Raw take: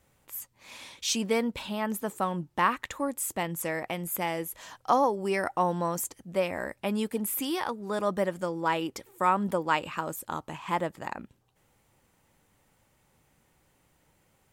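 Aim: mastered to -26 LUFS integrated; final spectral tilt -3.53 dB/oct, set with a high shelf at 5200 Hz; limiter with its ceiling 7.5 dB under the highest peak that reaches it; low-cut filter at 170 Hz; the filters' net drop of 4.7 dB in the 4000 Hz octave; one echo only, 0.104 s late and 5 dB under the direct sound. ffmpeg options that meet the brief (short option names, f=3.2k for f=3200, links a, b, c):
-af "highpass=170,equalizer=f=4k:t=o:g=-9,highshelf=f=5.2k:g=5,alimiter=limit=-18.5dB:level=0:latency=1,aecho=1:1:104:0.562,volume=4.5dB"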